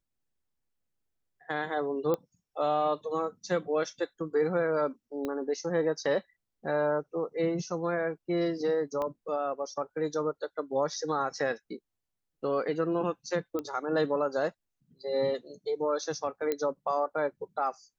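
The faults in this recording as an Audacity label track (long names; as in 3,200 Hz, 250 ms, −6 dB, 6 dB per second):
2.140000	2.140000	click −18 dBFS
5.250000	5.250000	click −21 dBFS
9.020000	9.020000	click −22 dBFS
13.590000	13.590000	click −21 dBFS
16.520000	16.520000	click −17 dBFS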